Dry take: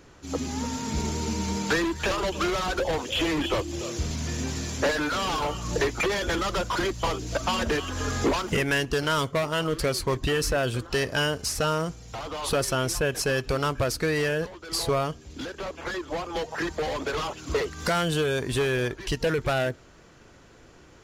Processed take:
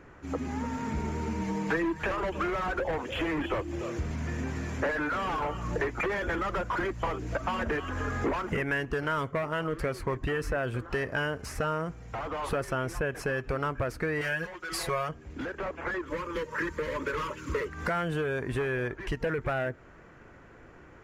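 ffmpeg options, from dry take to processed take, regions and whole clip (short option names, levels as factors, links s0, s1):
-filter_complex "[0:a]asettb=1/sr,asplit=3[s0][s1][s2];[s0]atrim=end=1.414[s3];[s1]atrim=start=1.41:end=2.03,asetpts=PTS-STARTPTS,afade=t=in:d=0.004:c=qsin,afade=t=out:st=0.616:d=0.004:c=qsin,bandreject=f=1400:w=8,aecho=1:1:6.2:0.67,atrim=end_sample=27342[s4];[s2]atrim=start=2.026[s5];[s3][s4]acrossfade=d=0.004:c1=hsin:c2=qsin[s6];[s6][s5]acrossfade=d=0.004:c1=qsin:c2=hsin,asettb=1/sr,asplit=3[s7][s8][s9];[s7]atrim=end=14.214[s10];[s8]atrim=start=14.21:end=15.09,asetpts=PTS-STARTPTS,afade=t=in:d=0.004:c=qsin,afade=t=out:st=0.876:d=0.004:c=qsin,tiltshelf=f=1400:g=-7,aecho=1:1:5.5:0.98,atrim=end_sample=38808[s11];[s9]atrim=start=15.086[s12];[s10][s11]acrossfade=d=0.004:c1=hsin:c2=qsin[s13];[s13][s12]acrossfade=d=0.004:c1=qsin:c2=hsin,asettb=1/sr,asplit=3[s14][s15][s16];[s14]atrim=end=16.064[s17];[s15]atrim=start=16.06:end=17.68,asetpts=PTS-STARTPTS,afade=t=in:d=0.004:c=qsin,afade=t=out:st=1.616:d=0.004:c=qsin,asuperstop=centerf=730:order=20:qfactor=2.8,highshelf=f=4900:g=10[s18];[s16]atrim=start=17.676[s19];[s17][s18]acrossfade=d=0.004:c1=hsin:c2=qsin[s20];[s20][s19]acrossfade=d=0.004:c1=qsin:c2=hsin,highshelf=f=2800:t=q:w=1.5:g=-12,acompressor=threshold=0.0282:ratio=2"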